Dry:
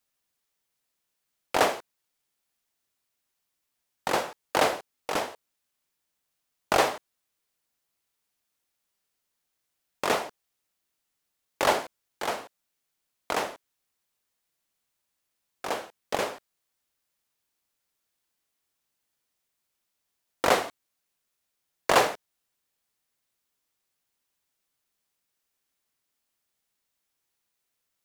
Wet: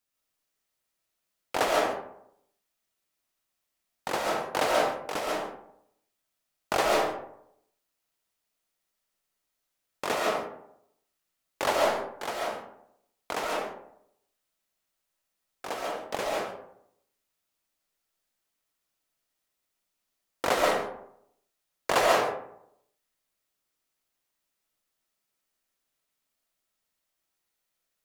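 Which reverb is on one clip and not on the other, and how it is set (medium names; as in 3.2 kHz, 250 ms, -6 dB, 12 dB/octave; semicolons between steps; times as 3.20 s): algorithmic reverb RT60 0.74 s, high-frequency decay 0.45×, pre-delay 95 ms, DRR -2.5 dB; trim -4.5 dB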